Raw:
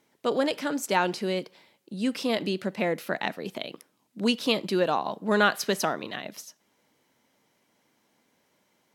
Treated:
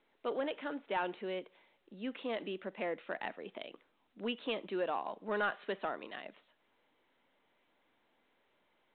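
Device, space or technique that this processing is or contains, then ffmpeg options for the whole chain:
telephone: -af "highpass=300,lowpass=3400,asoftclip=type=tanh:threshold=-16.5dB,volume=-8.5dB" -ar 8000 -c:a pcm_mulaw

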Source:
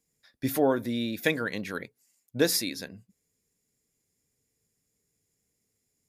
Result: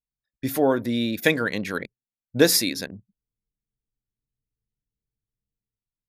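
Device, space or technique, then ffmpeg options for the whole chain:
voice memo with heavy noise removal: -af "anlmdn=0.0631,dynaudnorm=framelen=190:gausssize=7:maxgain=9dB"

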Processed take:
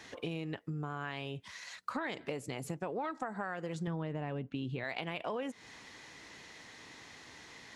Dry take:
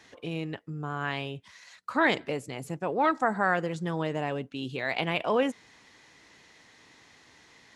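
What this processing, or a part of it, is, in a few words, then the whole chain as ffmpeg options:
serial compression, leveller first: -filter_complex "[0:a]asettb=1/sr,asplit=3[link_01][link_02][link_03];[link_01]atrim=end=3.874[link_04];[link_02]atrim=start=3.87:end=4.84,asetpts=PTS-STARTPTS,afade=type=in:duration=0.004:curve=qsin,afade=type=out:start_time=0.966:duration=0.004:curve=qsin,bass=frequency=250:gain=8,treble=frequency=4000:gain=-12[link_05];[link_03]atrim=start=4.836[link_06];[link_04][link_05]acrossfade=duration=0.004:curve1=hsin:curve2=qsin[link_07];[link_07][link_06]acrossfade=duration=0.004:curve1=qsin:curve2=hsin,acompressor=threshold=-30dB:ratio=2.5,acompressor=threshold=-40dB:ratio=4,volume=4dB"

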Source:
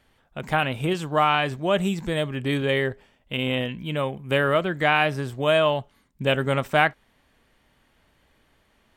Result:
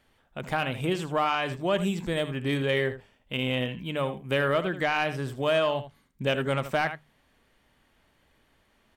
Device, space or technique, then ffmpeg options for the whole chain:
soft clipper into limiter: -af "bandreject=frequency=50:width_type=h:width=6,bandreject=frequency=100:width_type=h:width=6,bandreject=frequency=150:width_type=h:width=6,aecho=1:1:79:0.224,asoftclip=type=tanh:threshold=-9.5dB,alimiter=limit=-13.5dB:level=0:latency=1:release=233,volume=-2.5dB"

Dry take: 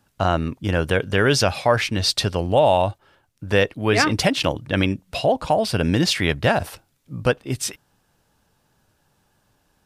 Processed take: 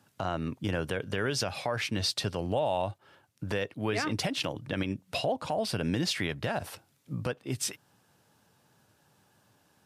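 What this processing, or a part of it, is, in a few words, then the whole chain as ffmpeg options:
podcast mastering chain: -af "highpass=frequency=92:width=0.5412,highpass=frequency=92:width=1.3066,acompressor=threshold=-32dB:ratio=2,alimiter=limit=-18.5dB:level=0:latency=1:release=69" -ar 32000 -c:a libmp3lame -b:a 96k

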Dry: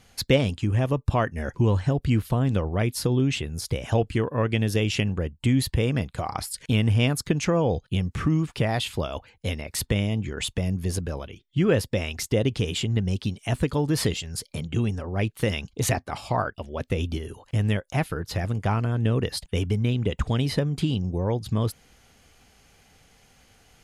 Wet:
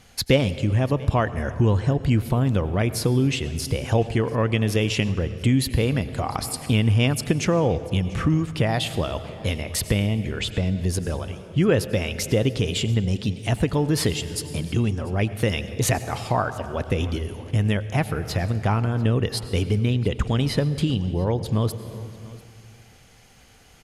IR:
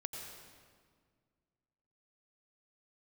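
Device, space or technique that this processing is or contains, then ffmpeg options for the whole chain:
compressed reverb return: -filter_complex "[0:a]asplit=3[link_01][link_02][link_03];[link_01]afade=type=out:start_time=9.8:duration=0.02[link_04];[link_02]lowpass=5200,afade=type=in:start_time=9.8:duration=0.02,afade=type=out:start_time=10.83:duration=0.02[link_05];[link_03]afade=type=in:start_time=10.83:duration=0.02[link_06];[link_04][link_05][link_06]amix=inputs=3:normalize=0,aecho=1:1:691:0.0708,asplit=2[link_07][link_08];[1:a]atrim=start_sample=2205[link_09];[link_08][link_09]afir=irnorm=-1:irlink=0,acompressor=threshold=-28dB:ratio=4,volume=-1.5dB[link_10];[link_07][link_10]amix=inputs=2:normalize=0"

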